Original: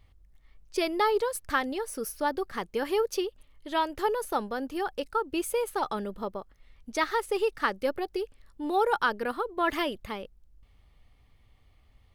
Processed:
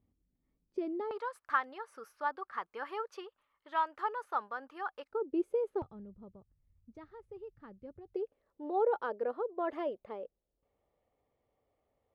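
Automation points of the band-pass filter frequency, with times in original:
band-pass filter, Q 2.4
250 Hz
from 1.11 s 1.2 kHz
from 5.11 s 380 Hz
from 5.82 s 100 Hz
from 8.14 s 530 Hz

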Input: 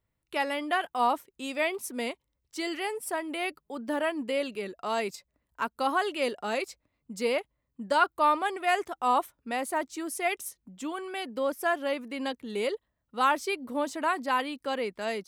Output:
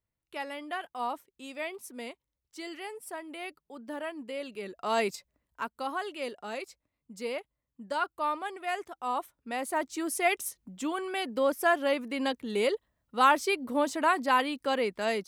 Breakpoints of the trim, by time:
4.38 s -8 dB
5.02 s +3 dB
5.88 s -7 dB
9.14 s -7 dB
10.05 s +2.5 dB

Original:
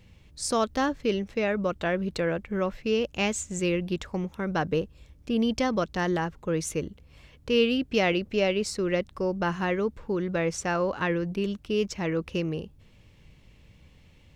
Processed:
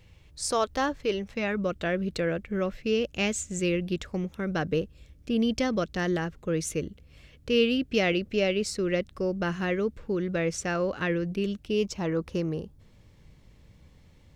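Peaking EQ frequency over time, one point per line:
peaking EQ -9 dB 0.56 oct
1.16 s 220 Hz
1.67 s 930 Hz
11.53 s 930 Hz
12.16 s 2.7 kHz

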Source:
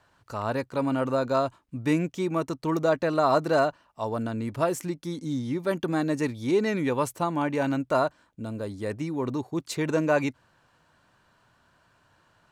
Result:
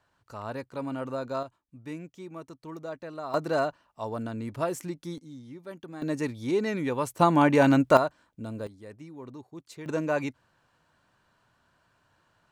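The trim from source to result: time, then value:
-7.5 dB
from 1.43 s -14.5 dB
from 3.34 s -4 dB
from 5.18 s -15 dB
from 6.02 s -3 dB
from 7.19 s +6.5 dB
from 7.97 s -2.5 dB
from 8.67 s -14 dB
from 9.86 s -4.5 dB

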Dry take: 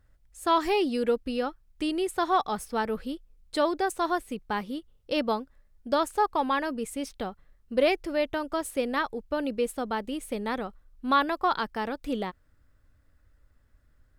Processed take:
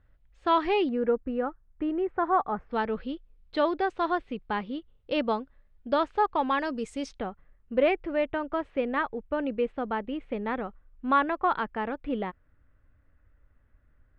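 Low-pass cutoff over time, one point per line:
low-pass 24 dB/octave
3.5 kHz
from 0.89 s 1.8 kHz
from 2.71 s 3.6 kHz
from 6.59 s 6.6 kHz
from 7.19 s 2.7 kHz

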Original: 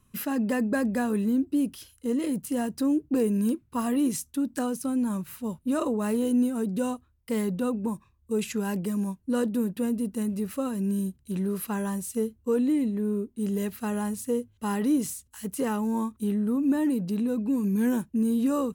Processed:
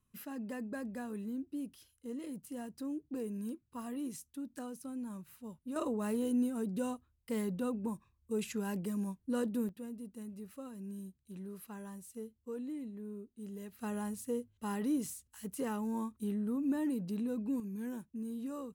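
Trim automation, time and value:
-15 dB
from 5.76 s -8 dB
from 9.69 s -17 dB
from 13.79 s -9 dB
from 17.60 s -16 dB

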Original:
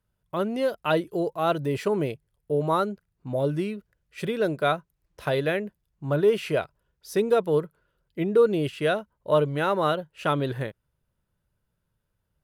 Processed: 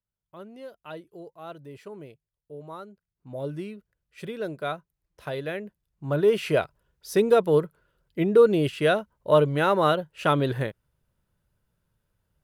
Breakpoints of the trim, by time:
2.90 s -16.5 dB
3.45 s -7 dB
5.44 s -7 dB
6.55 s +2.5 dB

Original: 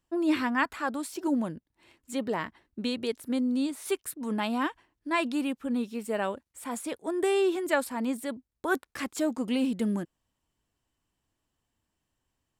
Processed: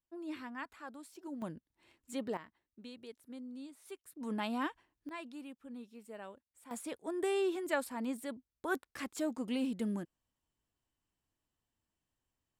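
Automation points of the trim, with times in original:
-17 dB
from 1.42 s -7.5 dB
from 2.37 s -19 dB
from 4.16 s -7 dB
from 5.09 s -18 dB
from 6.71 s -7.5 dB

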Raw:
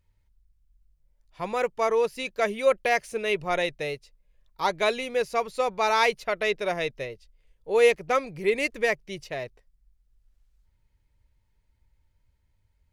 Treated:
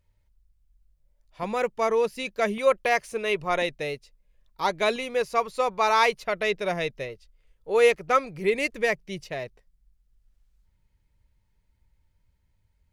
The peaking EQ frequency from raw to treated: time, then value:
peaking EQ +5.5 dB 0.4 oct
590 Hz
from 1.43 s 210 Hz
from 2.58 s 1.1 kHz
from 3.62 s 240 Hz
from 4.96 s 1.1 kHz
from 6.24 s 180 Hz
from 7.09 s 1.3 kHz
from 8.41 s 180 Hz

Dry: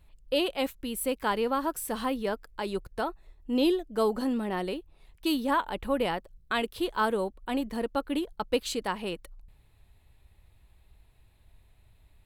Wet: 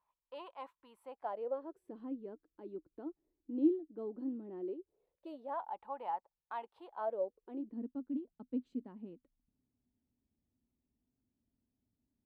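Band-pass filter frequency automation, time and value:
band-pass filter, Q 8.4
0.97 s 1 kHz
1.96 s 310 Hz
4.55 s 310 Hz
5.77 s 870 Hz
6.85 s 870 Hz
7.82 s 250 Hz

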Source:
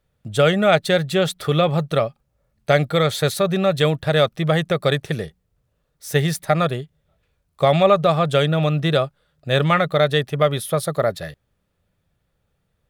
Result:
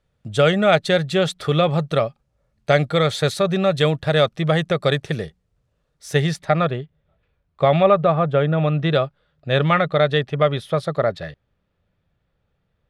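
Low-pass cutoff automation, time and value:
6.14 s 8 kHz
6.66 s 3.1 kHz
7.76 s 3.1 kHz
8.35 s 1.5 kHz
8.96 s 4 kHz

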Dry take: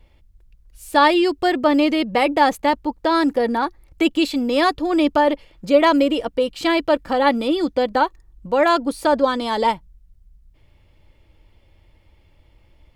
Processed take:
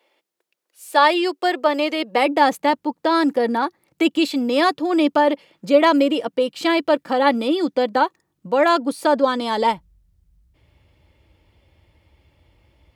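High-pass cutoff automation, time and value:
high-pass 24 dB/octave
1.97 s 370 Hz
2.42 s 150 Hz
9.15 s 150 Hz
9.62 s 53 Hz

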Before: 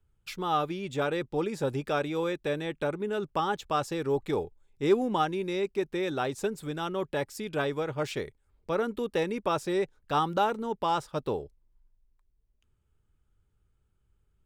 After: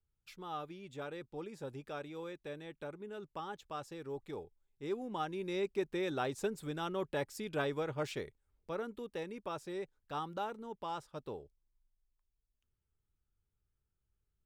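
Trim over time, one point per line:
4.97 s -14.5 dB
5.58 s -5.5 dB
7.93 s -5.5 dB
9.11 s -13 dB

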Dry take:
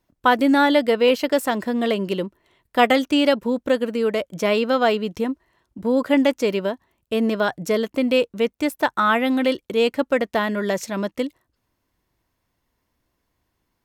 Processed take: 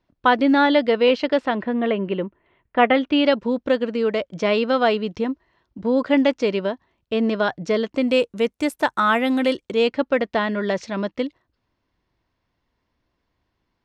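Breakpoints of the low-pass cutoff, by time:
low-pass 24 dB/octave
1.22 s 4.8 kHz
1.77 s 2.7 kHz
2.84 s 2.7 kHz
3.41 s 5.4 kHz
7.85 s 5.4 kHz
8.27 s 11 kHz
9.49 s 11 kHz
9.96 s 5.1 kHz

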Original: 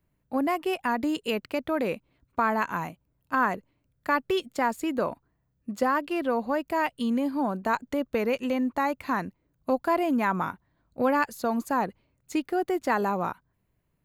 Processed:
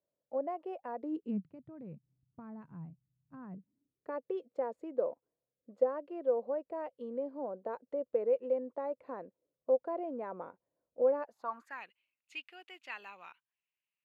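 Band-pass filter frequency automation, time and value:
band-pass filter, Q 5.6
0.97 s 560 Hz
1.52 s 140 Hz
3.47 s 140 Hz
4.15 s 510 Hz
11.19 s 510 Hz
11.84 s 2.7 kHz

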